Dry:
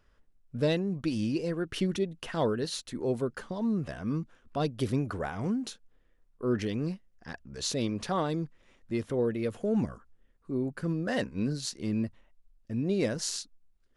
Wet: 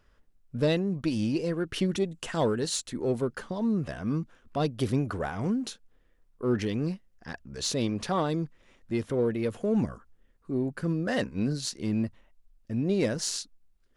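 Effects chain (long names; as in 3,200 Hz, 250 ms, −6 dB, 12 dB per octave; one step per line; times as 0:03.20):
0:01.97–0:02.88: parametric band 7,600 Hz +10.5 dB 0.54 octaves
in parallel at −10 dB: asymmetric clip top −31.5 dBFS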